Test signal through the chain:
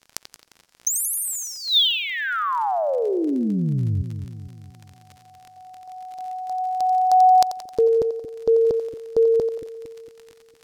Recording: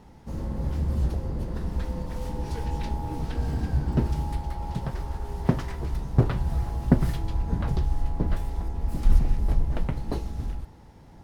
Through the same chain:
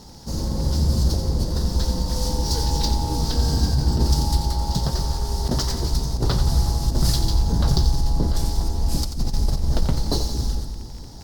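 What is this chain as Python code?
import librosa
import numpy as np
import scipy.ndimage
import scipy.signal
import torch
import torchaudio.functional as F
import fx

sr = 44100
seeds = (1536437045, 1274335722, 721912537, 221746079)

y = fx.high_shelf_res(x, sr, hz=3400.0, db=12.5, q=3.0)
y = fx.over_compress(y, sr, threshold_db=-22.0, ratio=-0.5)
y = fx.dmg_crackle(y, sr, seeds[0], per_s=43.0, level_db=-38.0)
y = fx.echo_split(y, sr, split_hz=400.0, low_ms=228, high_ms=88, feedback_pct=52, wet_db=-9.0)
y = np.interp(np.arange(len(y)), np.arange(len(y))[::2], y[::2])
y = y * librosa.db_to_amplitude(5.0)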